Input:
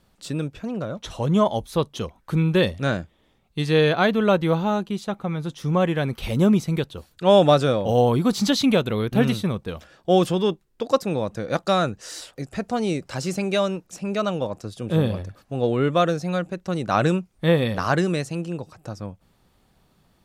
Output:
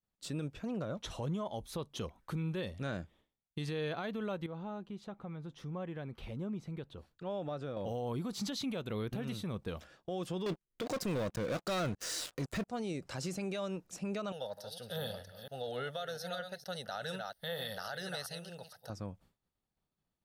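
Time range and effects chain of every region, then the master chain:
4.46–7.77 s: low-pass 2 kHz 6 dB/octave + compression 2:1, threshold -40 dBFS
10.46–12.68 s: waveshaping leveller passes 5 + band-stop 830 Hz, Q 9.9
14.32–18.90 s: chunks repeated in reverse 232 ms, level -11 dB + RIAA curve recording + static phaser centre 1.6 kHz, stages 8
whole clip: expander -48 dBFS; compression 10:1, threshold -24 dBFS; peak limiter -22 dBFS; trim -7.5 dB

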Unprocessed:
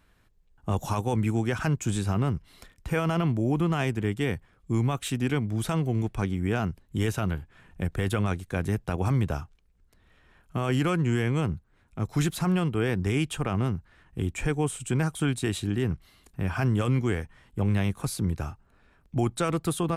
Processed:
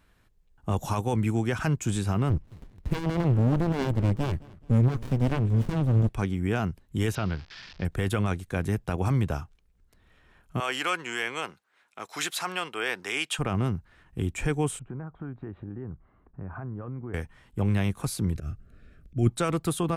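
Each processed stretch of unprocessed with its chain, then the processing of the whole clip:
2.30–6.09 s: bass shelf 440 Hz +5.5 dB + feedback delay 215 ms, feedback 38%, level -22 dB + sliding maximum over 65 samples
7.15–7.85 s: zero-crossing glitches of -27 dBFS + elliptic low-pass 5.1 kHz, stop band 60 dB
10.60–13.39 s: high-pass 600 Hz + peaking EQ 3.2 kHz +6 dB 3 oct
14.79–17.14 s: low-pass 1.4 kHz 24 dB/octave + compression 3:1, threshold -37 dBFS
18.35–19.29 s: bass shelf 320 Hz +11.5 dB + slow attack 182 ms + Butterworth band-stop 910 Hz, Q 1.8
whole clip: none

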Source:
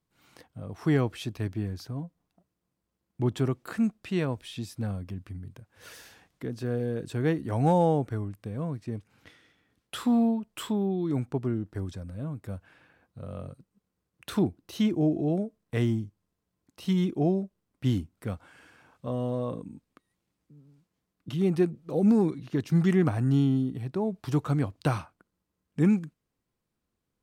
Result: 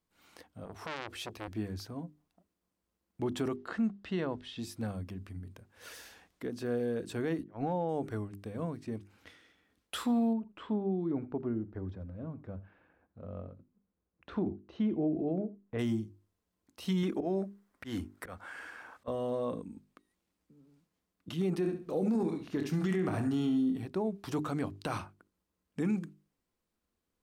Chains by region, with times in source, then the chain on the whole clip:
0.65–1.48 s: de-esser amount 90% + high-pass 44 Hz 6 dB/octave + transformer saturation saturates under 2.4 kHz
3.56–4.59 s: low-pass 3.9 kHz + band-stop 2.4 kHz, Q 6.4
7.43–7.89 s: gate -26 dBFS, range -27 dB + distance through air 210 m
10.33–15.79 s: tape spacing loss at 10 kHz 43 dB + delay 84 ms -19.5 dB
17.03–19.08 s: FFT filter 160 Hz 0 dB, 1.8 kHz +13 dB, 2.6 kHz +5 dB + slow attack 227 ms
21.59–23.86 s: doubling 27 ms -9.5 dB + feedback delay 69 ms, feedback 27%, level -10 dB
whole clip: peaking EQ 130 Hz -14 dB 0.37 oct; hum notches 50/100/150/200/250/300/350/400 Hz; peak limiter -22.5 dBFS; trim -1 dB

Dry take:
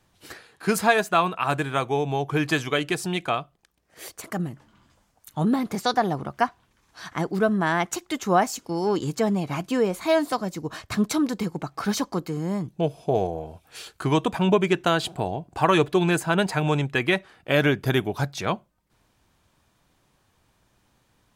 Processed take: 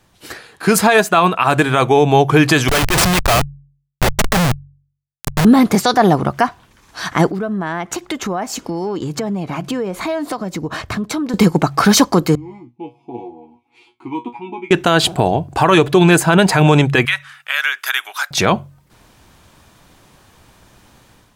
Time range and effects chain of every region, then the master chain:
2.68–5.45 s: Schmitt trigger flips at -32.5 dBFS + peaking EQ 300 Hz -9.5 dB 1.2 oct + waveshaping leveller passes 1
7.30–11.34 s: treble shelf 3.9 kHz -9 dB + compression 5:1, threshold -37 dBFS
12.35–14.71 s: vowel filter u + feedback comb 120 Hz, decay 0.18 s, mix 100%
17.05–18.31 s: Chebyshev high-pass 1.3 kHz, order 3 + peaking EQ 4.5 kHz -5.5 dB 0.25 oct + compression 2:1, threshold -33 dBFS
whole clip: de-hum 46.89 Hz, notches 3; level rider gain up to 8 dB; peak limiter -11 dBFS; trim +9 dB

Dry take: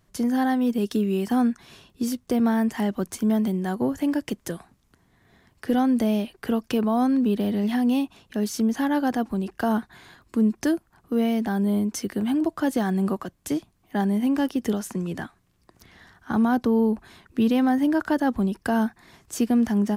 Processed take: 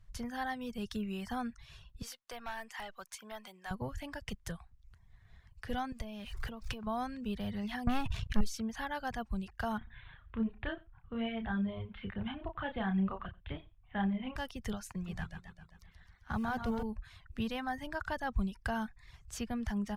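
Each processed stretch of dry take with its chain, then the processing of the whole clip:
2.02–3.71 s: high-pass 650 Hz + hard clipper -26 dBFS
5.92–6.87 s: jump at every zero crossing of -41 dBFS + compression 10:1, threshold -25 dBFS
7.87–8.41 s: peaking EQ 92 Hz +10.5 dB 2.5 oct + waveshaping leveller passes 2 + transient shaper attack -2 dB, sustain +10 dB
9.78–14.36 s: steep low-pass 3.6 kHz 72 dB/octave + doubling 31 ms -4.5 dB + delay 90 ms -12 dB
14.91–16.83 s: companding laws mixed up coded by A + modulated delay 131 ms, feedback 58%, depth 130 cents, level -6 dB
whole clip: RIAA curve playback; reverb removal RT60 0.55 s; amplifier tone stack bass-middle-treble 10-0-10; trim +1 dB

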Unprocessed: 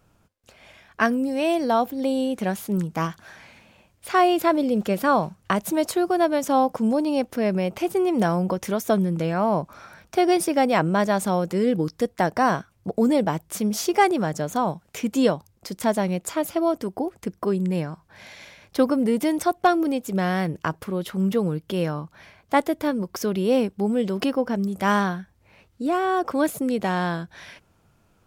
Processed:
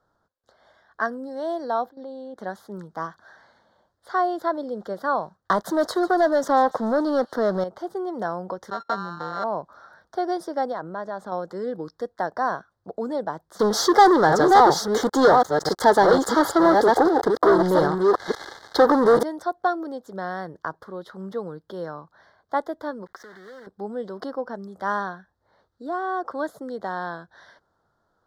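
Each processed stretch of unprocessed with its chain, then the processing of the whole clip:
1.89–2.38 s: level held to a coarse grid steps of 14 dB + distance through air 100 m
5.37–7.64 s: waveshaping leveller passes 3 + feedback echo behind a high-pass 145 ms, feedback 62%, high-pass 2.7 kHz, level -16 dB
8.70–9.44 s: sorted samples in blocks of 32 samples + gate -31 dBFS, range -21 dB + distance through air 140 m
10.72–11.32 s: treble shelf 4.3 kHz -9.5 dB + compression 5:1, threshold -21 dBFS + hard clipper -18 dBFS
13.59–19.23 s: chunks repeated in reverse 700 ms, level -5 dB + comb 2.4 ms, depth 47% + waveshaping leveller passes 5
23.06–23.67 s: block-companded coder 3-bit + peaking EQ 1.9 kHz +14.5 dB 0.87 oct + compression 12:1, threshold -32 dBFS
whole clip: Chebyshev band-stop 1.6–4 kHz, order 2; three-band isolator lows -12 dB, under 380 Hz, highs -19 dB, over 4.3 kHz; trim -2.5 dB

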